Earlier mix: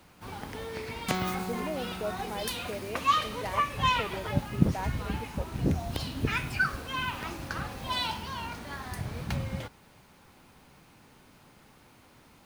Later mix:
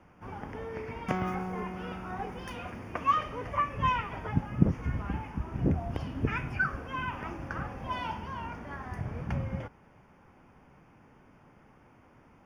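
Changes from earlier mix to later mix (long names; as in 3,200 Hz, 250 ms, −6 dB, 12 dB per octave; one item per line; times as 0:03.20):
speech: muted
master: add moving average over 11 samples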